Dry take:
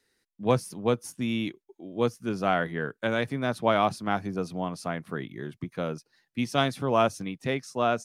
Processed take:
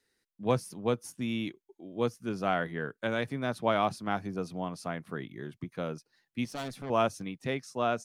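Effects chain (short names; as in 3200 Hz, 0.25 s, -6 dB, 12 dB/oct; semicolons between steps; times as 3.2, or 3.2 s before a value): 6.45–6.9 tube stage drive 29 dB, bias 0.55; gain -4 dB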